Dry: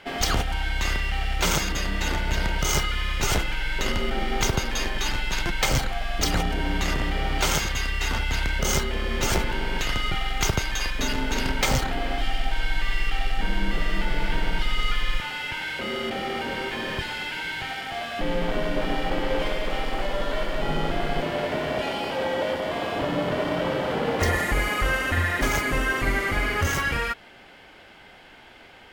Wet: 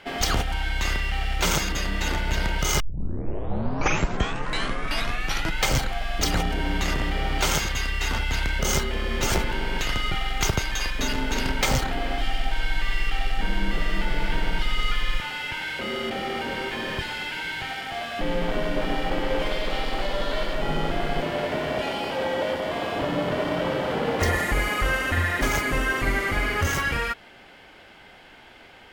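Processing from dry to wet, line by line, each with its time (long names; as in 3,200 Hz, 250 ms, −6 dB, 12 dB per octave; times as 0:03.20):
0:02.80: tape start 2.86 s
0:19.51–0:20.54: parametric band 4,100 Hz +6 dB 0.64 octaves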